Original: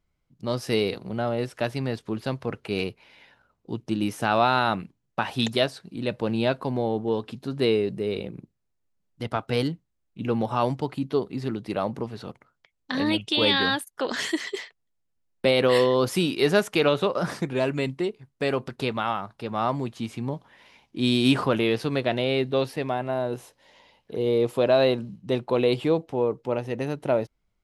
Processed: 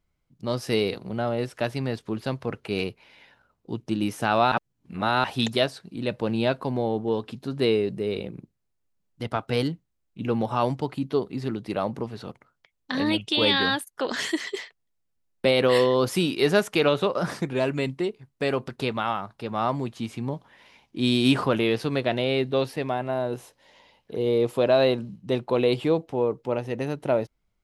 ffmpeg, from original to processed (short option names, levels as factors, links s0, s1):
-filter_complex "[0:a]asplit=3[s0][s1][s2];[s0]atrim=end=4.522[s3];[s1]atrim=start=4.518:end=5.242,asetpts=PTS-STARTPTS,areverse[s4];[s2]atrim=start=5.238[s5];[s3][s4]acrossfade=d=0.004:c1=hsin:c2=hsin[s6];[s6][s5]acrossfade=d=0.004:c1=hsin:c2=hsin"